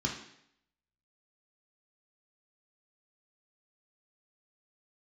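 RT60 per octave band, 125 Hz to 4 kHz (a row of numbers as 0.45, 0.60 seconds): 0.70, 0.70, 0.70, 0.70, 0.75, 0.70 seconds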